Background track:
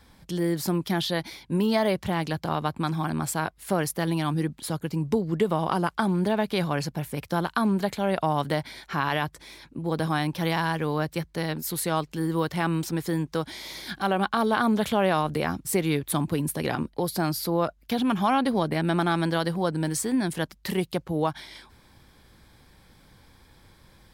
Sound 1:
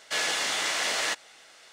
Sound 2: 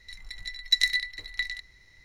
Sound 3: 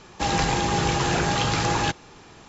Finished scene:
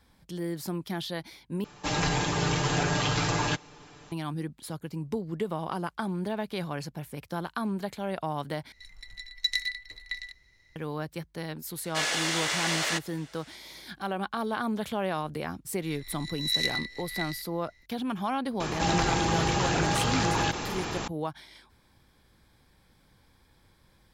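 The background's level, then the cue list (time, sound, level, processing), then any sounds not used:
background track -7.5 dB
1.64 s: replace with 3 -5.5 dB + comb 6.8 ms, depth 74%
8.72 s: replace with 2 -5.5 dB
11.84 s: add 1 -1 dB
15.82 s: add 2 -7 dB + reverse spectral sustain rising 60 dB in 0.54 s
18.60 s: add 3 -5 dB + level flattener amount 70%

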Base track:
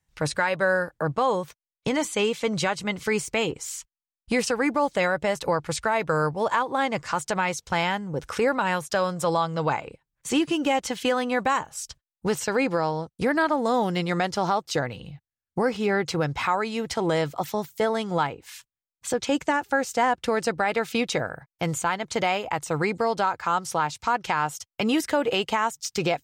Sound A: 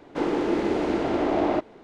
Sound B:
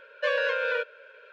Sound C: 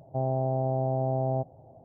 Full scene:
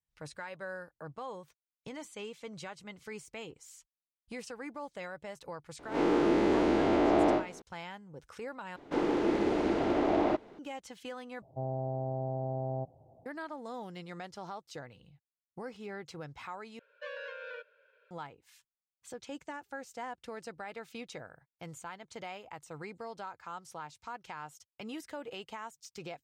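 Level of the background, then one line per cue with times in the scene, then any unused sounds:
base track -19 dB
5.79 s: add A -0.5 dB + spectral blur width 86 ms
8.76 s: replace with A -4.5 dB
11.42 s: replace with C -7.5 dB
16.79 s: replace with B -16.5 dB

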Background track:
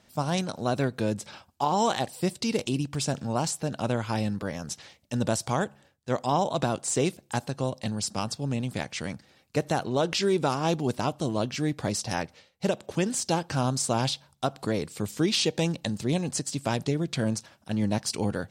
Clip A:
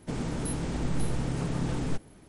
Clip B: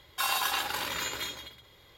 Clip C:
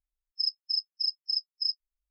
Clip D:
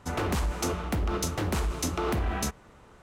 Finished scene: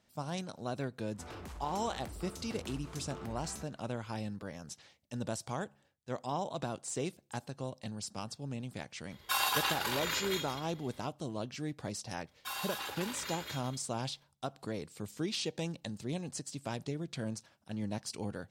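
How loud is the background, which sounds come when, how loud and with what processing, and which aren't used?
background track -11 dB
1.13 s: add D -13 dB + compression, threshold -30 dBFS
9.11 s: add B -2 dB
12.27 s: add B -16.5 dB + waveshaping leveller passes 2
not used: A, C

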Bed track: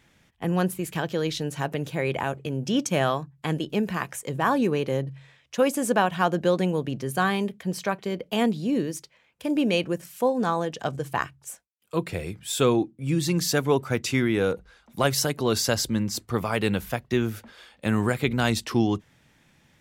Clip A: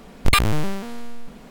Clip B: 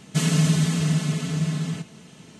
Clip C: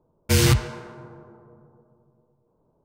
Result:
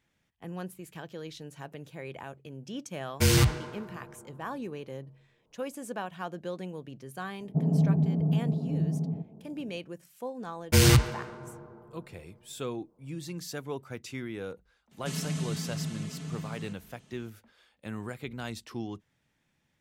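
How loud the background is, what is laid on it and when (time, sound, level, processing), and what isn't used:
bed track -14.5 dB
2.91 s: add C -4 dB
7.40 s: add B -3.5 dB + elliptic low-pass 790 Hz, stop band 70 dB
10.43 s: add C -1.5 dB
14.91 s: add B -13 dB
not used: A

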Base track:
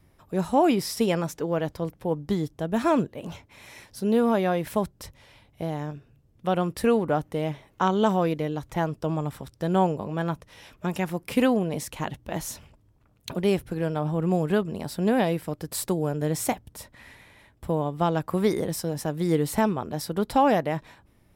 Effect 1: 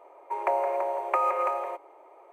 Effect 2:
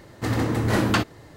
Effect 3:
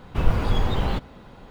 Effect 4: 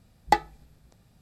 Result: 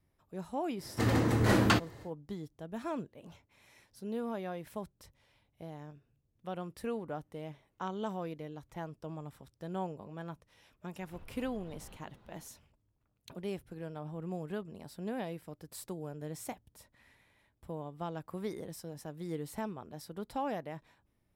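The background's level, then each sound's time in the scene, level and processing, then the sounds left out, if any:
base track -15.5 dB
0.76 s: add 2 -4.5 dB, fades 0.10 s
10.98 s: add 3 -17 dB + compression 4:1, threshold -34 dBFS
not used: 1, 4

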